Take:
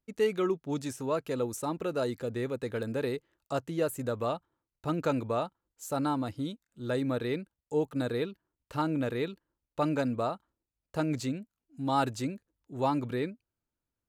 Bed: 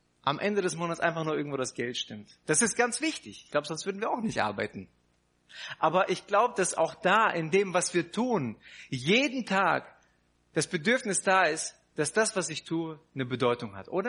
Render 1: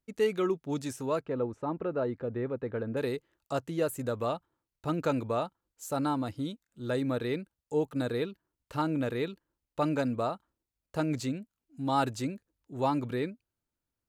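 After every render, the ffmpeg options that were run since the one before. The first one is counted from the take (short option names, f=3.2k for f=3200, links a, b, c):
-filter_complex "[0:a]asettb=1/sr,asplit=3[a][b][c];[a]atrim=end=1.214[d];[b]atrim=start=1.21:end=2.97,asetpts=PTS-STARTPTS,afade=t=in:d=0.004:c=qsin,afade=t=out:st=1.756:d=0.004:c=qsin,lowpass=1.6k[e];[c]atrim=start=2.966[f];[d][e]acrossfade=d=0.004:c1=hsin:c2=qsin[g];[g][f]acrossfade=d=0.004:c1=qsin:c2=hsin"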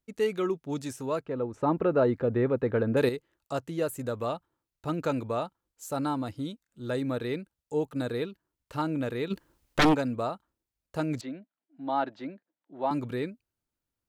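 -filter_complex "[0:a]asplit=3[a][b][c];[a]afade=t=out:st=9.3:d=0.02[d];[b]aeval=exprs='0.15*sin(PI/2*3.98*val(0)/0.15)':c=same,afade=t=in:st=9.3:d=0.02,afade=t=out:st=9.93:d=0.02[e];[c]afade=t=in:st=9.93:d=0.02[f];[d][e][f]amix=inputs=3:normalize=0,asettb=1/sr,asplit=3[g][h][i];[g]atrim=end=11.214[j];[h]atrim=start=11.21:end=12.91,asetpts=PTS-STARTPTS,afade=t=in:d=0.004:c=qsin,afade=t=out:st=1.696:d=0.004:c=qsin,highpass=f=210:w=0.5412,highpass=f=210:w=1.3066,equalizer=f=230:t=q:w=4:g=-7,equalizer=f=440:t=q:w=4:g=-9,equalizer=f=660:t=q:w=4:g=4,equalizer=f=1.2k:t=q:w=4:g=-4,equalizer=f=2.6k:t=q:w=4:g=-8,lowpass=f=3.2k:w=0.5412,lowpass=f=3.2k:w=1.3066[k];[i]atrim=start=12.906[l];[j][k]acrossfade=d=0.004:c1=hsin:c2=qsin[m];[m][l]acrossfade=d=0.004:c1=qsin:c2=hsin,asplit=3[n][o][p];[n]atrim=end=1.542[q];[o]atrim=start=1.538:end=3.092,asetpts=PTS-STARTPTS,volume=7.5dB[r];[p]atrim=start=3.088[s];[q][r]acrossfade=d=0.004:c1=hsin:c2=hsin[t];[t][s]acrossfade=d=0.004:c1=hsin:c2=hsin"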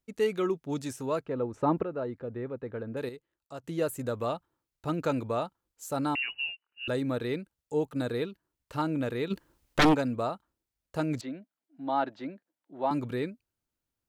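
-filter_complex "[0:a]asettb=1/sr,asplit=3[a][b][c];[a]atrim=end=6.154[d];[b]atrim=start=6.15:end=6.88,asetpts=PTS-STARTPTS,afade=t=in:d=0.004:c=qsin,afade=t=out:st=0.726:d=0.004:c=qsin,lowpass=f=2.6k:t=q:w=0.5098,lowpass=f=2.6k:t=q:w=0.6013,lowpass=f=2.6k:t=q:w=0.9,lowpass=f=2.6k:t=q:w=2.563,afreqshift=-3000[e];[c]atrim=start=6.876[f];[d][e]acrossfade=d=0.004:c1=hsin:c2=qsin[g];[g][f]acrossfade=d=0.004:c1=qsin:c2=hsin,asplit=3[h][i][j];[h]atrim=end=1.832[k];[i]atrim=start=1.828:end=3.642,asetpts=PTS-STARTPTS,volume=-10.5dB[l];[j]atrim=start=3.638[m];[k][l]acrossfade=d=0.004:c1=hsin:c2=hsin[n];[n][m]acrossfade=d=0.004:c1=hsin:c2=hsin"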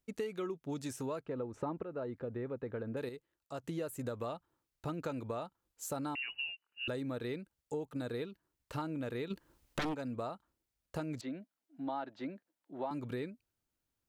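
-af "acompressor=threshold=-36dB:ratio=6"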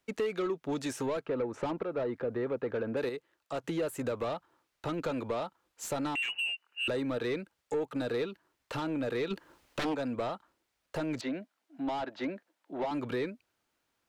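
-filter_complex "[0:a]asplit=2[a][b];[b]highpass=f=720:p=1,volume=21dB,asoftclip=type=tanh:threshold=-20dB[c];[a][c]amix=inputs=2:normalize=0,lowpass=f=2.4k:p=1,volume=-6dB,acrossover=split=360|610|2300[d][e][f][g];[f]asoftclip=type=tanh:threshold=-38.5dB[h];[d][e][h][g]amix=inputs=4:normalize=0"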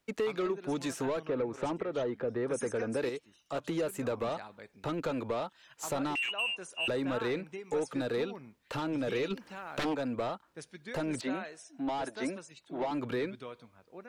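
-filter_complex "[1:a]volume=-18.5dB[a];[0:a][a]amix=inputs=2:normalize=0"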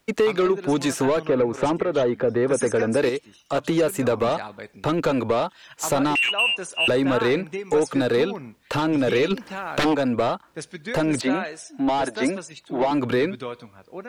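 -af "volume=12dB"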